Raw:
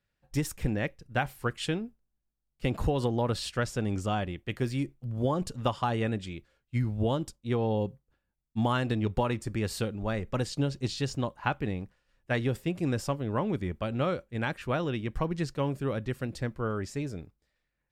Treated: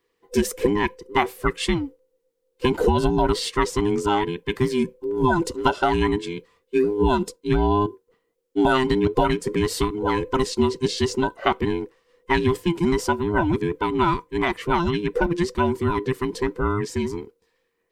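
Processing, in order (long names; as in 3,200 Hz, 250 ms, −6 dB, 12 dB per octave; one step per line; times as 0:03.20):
frequency inversion band by band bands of 500 Hz
level +8.5 dB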